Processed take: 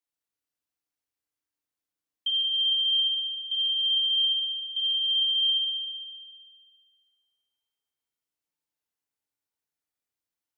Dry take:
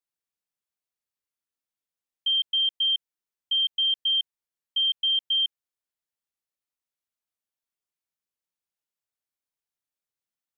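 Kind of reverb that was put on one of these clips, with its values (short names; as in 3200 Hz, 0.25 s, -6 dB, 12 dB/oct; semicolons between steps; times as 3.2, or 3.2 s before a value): FDN reverb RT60 3.6 s, high-frequency decay 0.55×, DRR -0.5 dB; gain -2 dB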